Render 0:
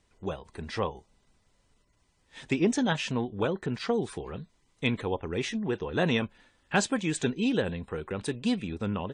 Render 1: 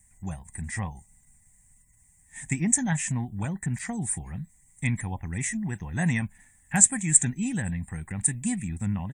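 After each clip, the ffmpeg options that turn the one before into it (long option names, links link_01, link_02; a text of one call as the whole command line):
ffmpeg -i in.wav -af "firequalizer=gain_entry='entry(160,0);entry(440,-28);entry(760,-8);entry(1300,-19);entry(1900,1);entry(2900,-19);entry(4500,-20);entry(7500,14)':delay=0.05:min_phase=1,volume=6.5dB" out.wav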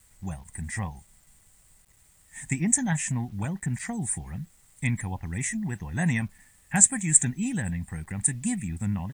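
ffmpeg -i in.wav -af "acrusher=bits=9:mix=0:aa=0.000001" out.wav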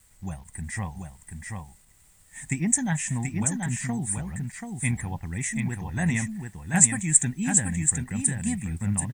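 ffmpeg -i in.wav -af "aecho=1:1:733:0.596" out.wav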